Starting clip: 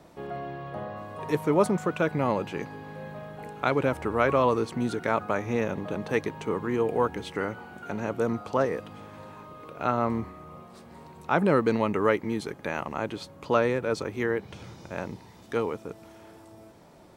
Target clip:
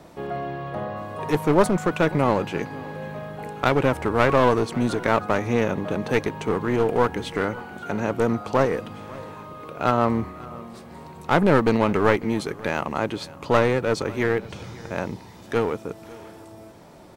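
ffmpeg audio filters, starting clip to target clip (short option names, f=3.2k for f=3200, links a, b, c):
-filter_complex "[0:a]aeval=exprs='clip(val(0),-1,0.0422)':c=same,asplit=2[a][b];[b]aecho=0:1:548:0.0891[c];[a][c]amix=inputs=2:normalize=0,volume=6dB"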